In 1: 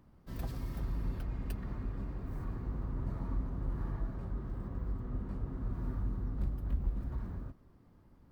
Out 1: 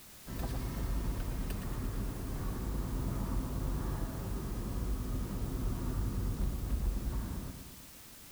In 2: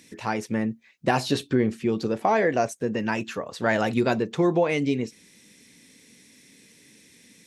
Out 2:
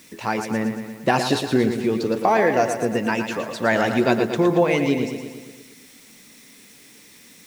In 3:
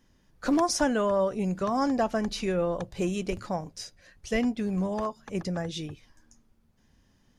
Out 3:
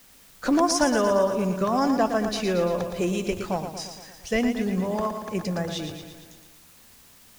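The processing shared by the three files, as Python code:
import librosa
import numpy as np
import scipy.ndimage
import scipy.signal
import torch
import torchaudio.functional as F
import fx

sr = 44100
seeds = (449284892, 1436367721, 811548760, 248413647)

p1 = fx.low_shelf(x, sr, hz=130.0, db=-5.0)
p2 = fx.quant_dither(p1, sr, seeds[0], bits=8, dither='triangular')
p3 = p1 + (p2 * librosa.db_to_amplitude(-6.0))
y = fx.echo_feedback(p3, sr, ms=115, feedback_pct=60, wet_db=-8)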